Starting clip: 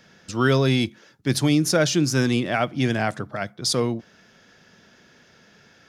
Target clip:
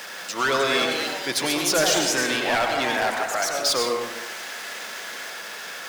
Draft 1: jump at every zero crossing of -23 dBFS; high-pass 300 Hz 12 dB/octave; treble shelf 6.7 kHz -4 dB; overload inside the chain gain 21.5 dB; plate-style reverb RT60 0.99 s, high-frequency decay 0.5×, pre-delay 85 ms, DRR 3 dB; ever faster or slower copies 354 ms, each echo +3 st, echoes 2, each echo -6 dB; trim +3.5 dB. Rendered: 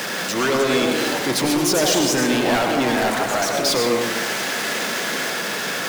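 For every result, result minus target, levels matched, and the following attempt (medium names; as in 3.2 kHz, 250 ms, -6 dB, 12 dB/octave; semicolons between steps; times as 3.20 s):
250 Hz band +6.0 dB; jump at every zero crossing: distortion +9 dB
jump at every zero crossing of -23 dBFS; high-pass 630 Hz 12 dB/octave; treble shelf 6.7 kHz -4 dB; overload inside the chain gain 21.5 dB; plate-style reverb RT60 0.99 s, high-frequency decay 0.5×, pre-delay 85 ms, DRR 3 dB; ever faster or slower copies 354 ms, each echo +3 st, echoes 2, each echo -6 dB; trim +3.5 dB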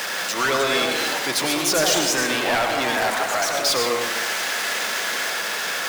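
jump at every zero crossing: distortion +9 dB
jump at every zero crossing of -33.5 dBFS; high-pass 630 Hz 12 dB/octave; treble shelf 6.7 kHz -4 dB; overload inside the chain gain 21.5 dB; plate-style reverb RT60 0.99 s, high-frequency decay 0.5×, pre-delay 85 ms, DRR 3 dB; ever faster or slower copies 354 ms, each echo +3 st, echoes 2, each echo -6 dB; trim +3.5 dB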